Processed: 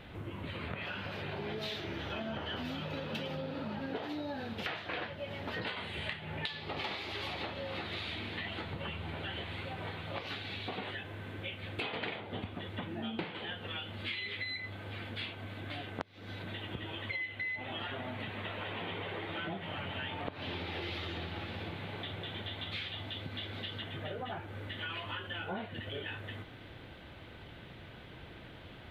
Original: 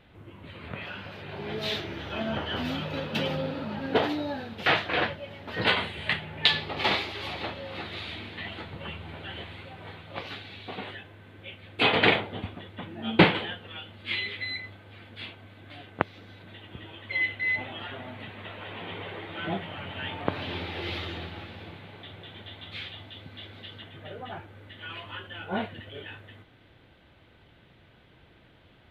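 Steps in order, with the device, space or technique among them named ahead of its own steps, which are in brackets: serial compression, leveller first (compressor 2.5:1, threshold -33 dBFS, peak gain reduction 14 dB; compressor 4:1, threshold -45 dBFS, peak gain reduction 17 dB); gain +7 dB

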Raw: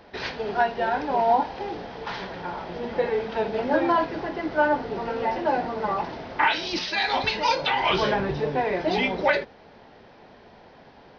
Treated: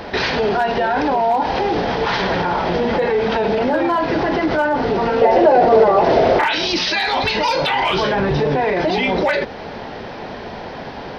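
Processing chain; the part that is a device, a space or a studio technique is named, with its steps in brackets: loud club master (compressor 1.5:1, threshold -30 dBFS, peak gain reduction 5.5 dB; hard clip -18 dBFS, distortion -28 dB; maximiser +29 dB); 5.21–6.44 band shelf 520 Hz +9 dB 1.2 oct; gain -9.5 dB

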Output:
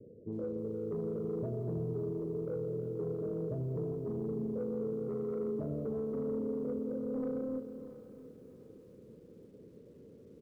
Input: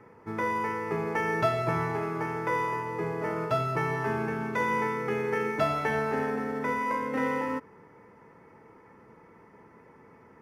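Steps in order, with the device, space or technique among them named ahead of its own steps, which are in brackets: steep low-pass 590 Hz 96 dB/oct; feedback echo 0.195 s, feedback 52%, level -21.5 dB; soft clipper into limiter (soft clip -24.5 dBFS, distortion -20 dB; limiter -32 dBFS, peak gain reduction 7 dB); feedback echo 0.687 s, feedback 35%, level -17 dB; lo-fi delay 0.318 s, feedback 55%, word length 11-bit, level -12 dB; gain +1 dB

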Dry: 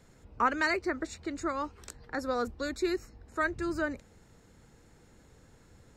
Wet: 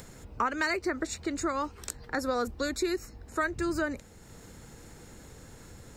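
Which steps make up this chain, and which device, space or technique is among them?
high shelf 7400 Hz +9 dB; upward and downward compression (upward compressor, threshold -47 dBFS; compressor 3:1, threshold -32 dBFS, peak gain reduction 9 dB); gain +5 dB

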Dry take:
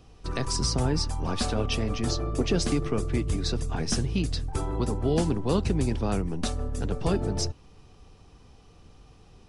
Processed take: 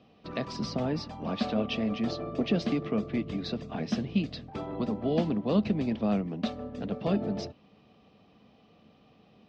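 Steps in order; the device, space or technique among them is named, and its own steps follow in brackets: kitchen radio (speaker cabinet 190–3900 Hz, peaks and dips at 210 Hz +9 dB, 380 Hz -5 dB, 630 Hz +6 dB, 910 Hz -6 dB, 1500 Hz -6 dB); gain -1.5 dB

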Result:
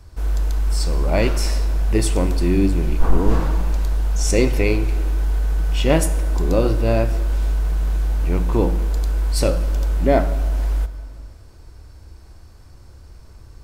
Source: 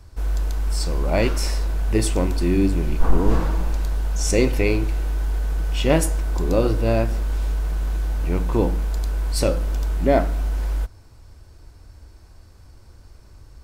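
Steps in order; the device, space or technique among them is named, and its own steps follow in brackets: compressed reverb return (on a send at -4 dB: reverb RT60 1.4 s, pre-delay 49 ms + compressor, threshold -25 dBFS, peak gain reduction 19 dB); on the sum: gain +1 dB

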